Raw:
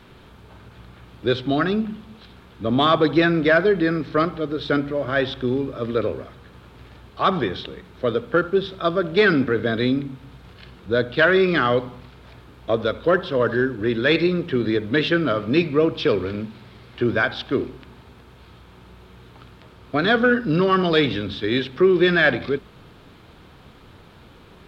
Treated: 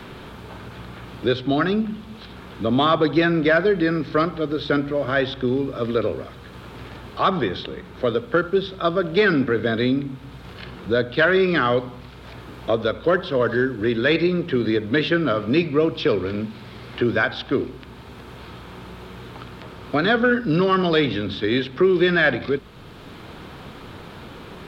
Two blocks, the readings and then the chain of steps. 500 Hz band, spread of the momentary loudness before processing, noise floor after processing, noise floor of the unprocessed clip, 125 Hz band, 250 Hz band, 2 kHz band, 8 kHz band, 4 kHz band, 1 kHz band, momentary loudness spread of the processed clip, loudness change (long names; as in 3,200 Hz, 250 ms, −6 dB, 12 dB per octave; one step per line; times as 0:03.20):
0.0 dB, 10 LU, −41 dBFS, −48 dBFS, 0.0 dB, 0.0 dB, −0.5 dB, can't be measured, −0.5 dB, 0.0 dB, 21 LU, 0.0 dB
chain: multiband upward and downward compressor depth 40%